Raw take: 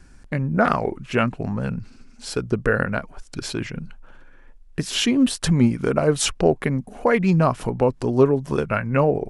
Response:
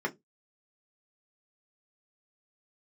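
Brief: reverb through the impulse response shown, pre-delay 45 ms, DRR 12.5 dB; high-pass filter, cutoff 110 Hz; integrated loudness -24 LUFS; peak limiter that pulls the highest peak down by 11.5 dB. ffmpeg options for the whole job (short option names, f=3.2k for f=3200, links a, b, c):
-filter_complex "[0:a]highpass=110,alimiter=limit=-15dB:level=0:latency=1,asplit=2[a][b];[1:a]atrim=start_sample=2205,adelay=45[c];[b][c]afir=irnorm=-1:irlink=0,volume=-20dB[d];[a][d]amix=inputs=2:normalize=0,volume=2dB"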